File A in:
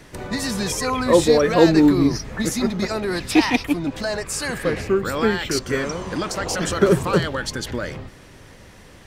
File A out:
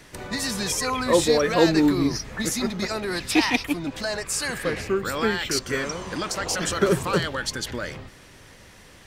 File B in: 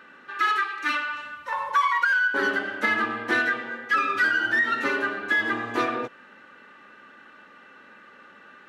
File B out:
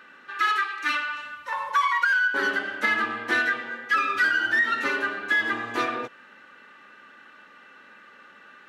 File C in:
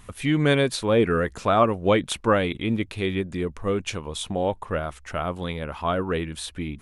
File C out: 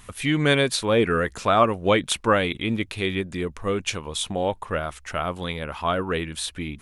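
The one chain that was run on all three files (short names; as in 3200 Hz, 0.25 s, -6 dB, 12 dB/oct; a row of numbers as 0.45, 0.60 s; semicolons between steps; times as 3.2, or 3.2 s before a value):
tilt shelf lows -3 dB, about 1100 Hz; match loudness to -24 LUFS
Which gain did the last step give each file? -2.5, -1.0, +1.5 dB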